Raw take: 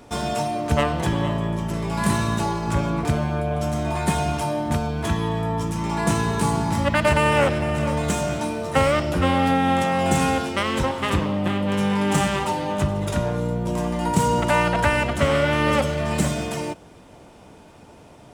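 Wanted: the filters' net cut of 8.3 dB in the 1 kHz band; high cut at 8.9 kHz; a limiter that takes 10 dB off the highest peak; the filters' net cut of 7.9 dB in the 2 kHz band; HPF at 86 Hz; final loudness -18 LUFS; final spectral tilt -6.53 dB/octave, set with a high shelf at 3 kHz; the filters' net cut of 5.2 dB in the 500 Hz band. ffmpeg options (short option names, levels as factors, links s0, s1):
-af "highpass=86,lowpass=8900,equalizer=f=500:t=o:g=-3.5,equalizer=f=1000:t=o:g=-7.5,equalizer=f=2000:t=o:g=-4.5,highshelf=f=3000:g=-8,volume=3.16,alimiter=limit=0.398:level=0:latency=1"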